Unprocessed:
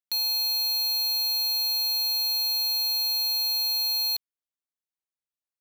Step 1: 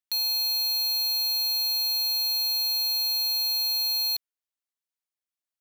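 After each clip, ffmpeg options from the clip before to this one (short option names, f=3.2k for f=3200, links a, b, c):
-af "lowshelf=f=380:g=-11.5"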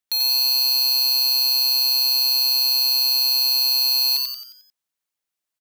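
-filter_complex "[0:a]asplit=7[a][b][c][d][e][f][g];[b]adelay=89,afreqshift=130,volume=-3dB[h];[c]adelay=178,afreqshift=260,volume=-9.6dB[i];[d]adelay=267,afreqshift=390,volume=-16.1dB[j];[e]adelay=356,afreqshift=520,volume=-22.7dB[k];[f]adelay=445,afreqshift=650,volume=-29.2dB[l];[g]adelay=534,afreqshift=780,volume=-35.8dB[m];[a][h][i][j][k][l][m]amix=inputs=7:normalize=0,volume=5dB"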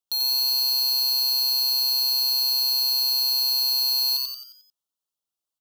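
-af "asuperstop=centerf=2000:order=8:qfactor=1.5,volume=-3.5dB"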